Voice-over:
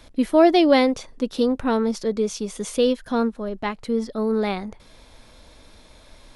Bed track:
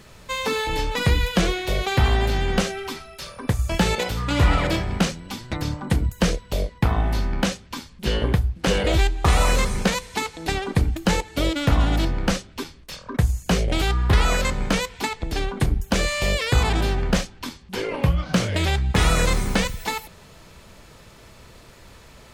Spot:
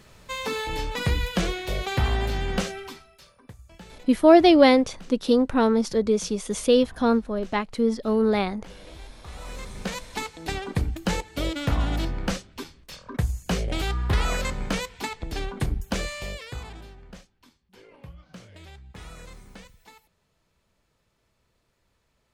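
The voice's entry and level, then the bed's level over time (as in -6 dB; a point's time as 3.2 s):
3.90 s, +1.0 dB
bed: 2.76 s -5 dB
3.62 s -26 dB
9.25 s -26 dB
10.07 s -5.5 dB
15.89 s -5.5 dB
16.96 s -24.5 dB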